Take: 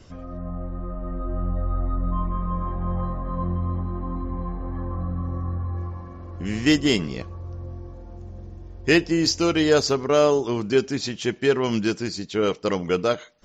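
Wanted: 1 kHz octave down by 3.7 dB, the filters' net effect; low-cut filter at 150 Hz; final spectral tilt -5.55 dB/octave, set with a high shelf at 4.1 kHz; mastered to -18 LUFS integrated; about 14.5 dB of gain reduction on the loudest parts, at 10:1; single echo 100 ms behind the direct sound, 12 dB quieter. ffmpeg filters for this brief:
-af "highpass=150,equalizer=f=1000:t=o:g=-4,highshelf=f=4100:g=-8,acompressor=threshold=0.0355:ratio=10,aecho=1:1:100:0.251,volume=7.08"

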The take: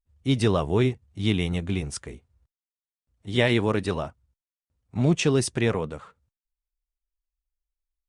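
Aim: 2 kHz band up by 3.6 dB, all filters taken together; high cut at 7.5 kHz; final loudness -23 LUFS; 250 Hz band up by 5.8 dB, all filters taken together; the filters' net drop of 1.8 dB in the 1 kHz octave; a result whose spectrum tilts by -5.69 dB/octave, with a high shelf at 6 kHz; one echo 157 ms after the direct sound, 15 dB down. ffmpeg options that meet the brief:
-af "lowpass=7500,equalizer=f=250:t=o:g=7.5,equalizer=f=1000:t=o:g=-4,equalizer=f=2000:t=o:g=4,highshelf=f=6000:g=8.5,aecho=1:1:157:0.178,volume=0.841"

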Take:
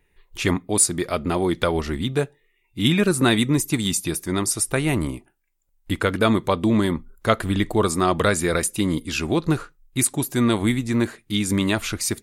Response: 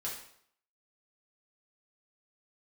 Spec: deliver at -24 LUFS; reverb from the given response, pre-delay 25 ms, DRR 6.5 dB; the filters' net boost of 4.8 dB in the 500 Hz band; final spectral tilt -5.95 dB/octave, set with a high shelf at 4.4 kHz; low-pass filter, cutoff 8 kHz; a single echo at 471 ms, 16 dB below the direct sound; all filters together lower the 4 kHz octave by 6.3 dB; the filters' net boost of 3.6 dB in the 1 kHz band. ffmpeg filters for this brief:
-filter_complex "[0:a]lowpass=8000,equalizer=f=500:t=o:g=5.5,equalizer=f=1000:t=o:g=4,equalizer=f=4000:t=o:g=-5,highshelf=f=4400:g=-6,aecho=1:1:471:0.158,asplit=2[s0][s1];[1:a]atrim=start_sample=2205,adelay=25[s2];[s1][s2]afir=irnorm=-1:irlink=0,volume=0.422[s3];[s0][s3]amix=inputs=2:normalize=0,volume=0.596"

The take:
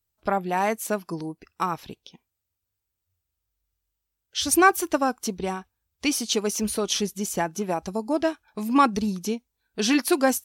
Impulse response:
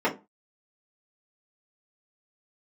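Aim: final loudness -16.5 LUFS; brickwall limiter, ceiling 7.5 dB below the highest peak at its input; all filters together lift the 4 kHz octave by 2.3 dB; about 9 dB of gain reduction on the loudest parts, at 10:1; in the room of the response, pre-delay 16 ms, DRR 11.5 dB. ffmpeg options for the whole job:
-filter_complex "[0:a]equalizer=f=4000:t=o:g=3,acompressor=threshold=0.0891:ratio=10,alimiter=limit=0.141:level=0:latency=1,asplit=2[s0][s1];[1:a]atrim=start_sample=2205,adelay=16[s2];[s1][s2]afir=irnorm=-1:irlink=0,volume=0.0531[s3];[s0][s3]amix=inputs=2:normalize=0,volume=4.22"

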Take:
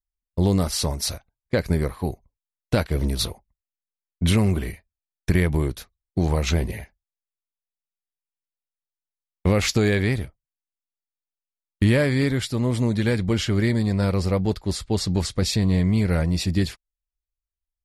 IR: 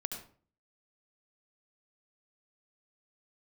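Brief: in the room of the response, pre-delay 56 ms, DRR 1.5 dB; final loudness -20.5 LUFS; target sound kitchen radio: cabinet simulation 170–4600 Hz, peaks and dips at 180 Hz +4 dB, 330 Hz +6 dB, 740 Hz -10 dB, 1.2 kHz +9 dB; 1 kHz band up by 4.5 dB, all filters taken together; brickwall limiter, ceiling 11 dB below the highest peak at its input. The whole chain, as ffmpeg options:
-filter_complex "[0:a]equalizer=f=1000:t=o:g=3,alimiter=limit=0.133:level=0:latency=1,asplit=2[s0][s1];[1:a]atrim=start_sample=2205,adelay=56[s2];[s1][s2]afir=irnorm=-1:irlink=0,volume=0.794[s3];[s0][s3]amix=inputs=2:normalize=0,highpass=170,equalizer=f=180:t=q:w=4:g=4,equalizer=f=330:t=q:w=4:g=6,equalizer=f=740:t=q:w=4:g=-10,equalizer=f=1200:t=q:w=4:g=9,lowpass=f=4600:w=0.5412,lowpass=f=4600:w=1.3066,volume=2.11"

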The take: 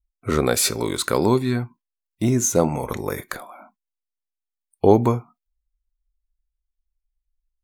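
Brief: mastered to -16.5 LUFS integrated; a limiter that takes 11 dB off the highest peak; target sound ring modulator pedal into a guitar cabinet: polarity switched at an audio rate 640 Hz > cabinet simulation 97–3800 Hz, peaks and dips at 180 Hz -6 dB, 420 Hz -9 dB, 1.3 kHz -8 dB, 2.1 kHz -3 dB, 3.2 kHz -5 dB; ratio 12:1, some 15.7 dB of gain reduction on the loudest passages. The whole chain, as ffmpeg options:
-af "acompressor=threshold=0.0631:ratio=12,alimiter=limit=0.0944:level=0:latency=1,aeval=exprs='val(0)*sgn(sin(2*PI*640*n/s))':c=same,highpass=97,equalizer=f=180:t=q:w=4:g=-6,equalizer=f=420:t=q:w=4:g=-9,equalizer=f=1300:t=q:w=4:g=-8,equalizer=f=2100:t=q:w=4:g=-3,equalizer=f=3200:t=q:w=4:g=-5,lowpass=f=3800:w=0.5412,lowpass=f=3800:w=1.3066,volume=8.91"

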